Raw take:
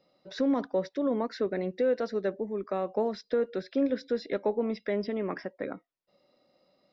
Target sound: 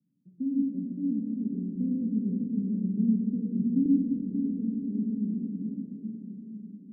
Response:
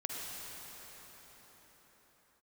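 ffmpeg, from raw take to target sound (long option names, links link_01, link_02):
-filter_complex "[0:a]asuperpass=centerf=170:order=8:qfactor=1.1,asettb=1/sr,asplit=3[link_01][link_02][link_03];[link_01]atrim=end=1.754[link_04];[link_02]atrim=start=1.75:end=3.86,asetpts=PTS-STARTPTS,afade=type=in:duration=0.004:curve=qsin,afade=type=out:start_time=2.106:duration=0.004:curve=qsin,aemphasis=mode=reproduction:type=riaa[link_05];[link_03]atrim=start=3.856[link_06];[link_04][link_05]acrossfade=duration=0.004:curve1=hsin:curve2=qsin[link_07];[link_07][link_06]acrossfade=duration=0.004:curve1=qsin:curve2=hsin[link_08];[1:a]atrim=start_sample=2205[link_09];[link_08][link_09]afir=irnorm=-1:irlink=0,volume=3.5dB"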